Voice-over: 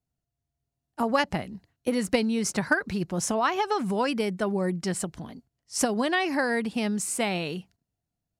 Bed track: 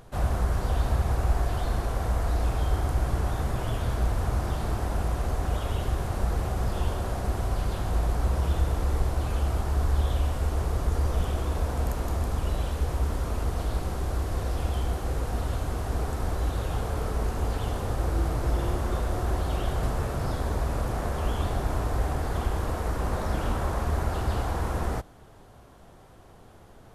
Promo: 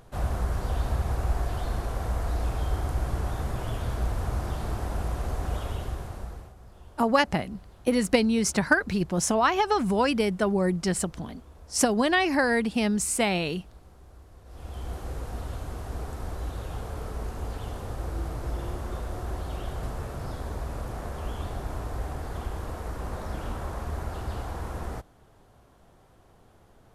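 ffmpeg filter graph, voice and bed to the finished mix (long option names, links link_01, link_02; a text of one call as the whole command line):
ffmpeg -i stem1.wav -i stem2.wav -filter_complex "[0:a]adelay=6000,volume=2.5dB[link_01];[1:a]volume=13.5dB,afade=type=out:start_time=5.59:duration=0.95:silence=0.105925,afade=type=in:start_time=14.45:duration=0.51:silence=0.158489[link_02];[link_01][link_02]amix=inputs=2:normalize=0" out.wav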